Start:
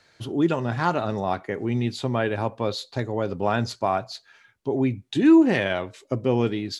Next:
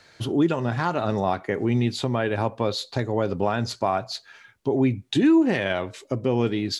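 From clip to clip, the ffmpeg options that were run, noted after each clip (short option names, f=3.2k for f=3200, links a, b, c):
-filter_complex "[0:a]asplit=2[a][b];[b]acompressor=threshold=-29dB:ratio=6,volume=-1dB[c];[a][c]amix=inputs=2:normalize=0,alimiter=limit=-11.5dB:level=0:latency=1:release=223"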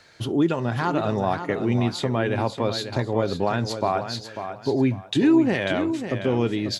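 -af "areverse,acompressor=mode=upward:threshold=-36dB:ratio=2.5,areverse,aecho=1:1:544|1088|1632:0.355|0.0923|0.024"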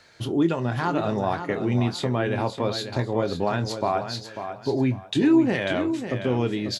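-filter_complex "[0:a]asplit=2[a][b];[b]adelay=24,volume=-11dB[c];[a][c]amix=inputs=2:normalize=0,volume=-1.5dB"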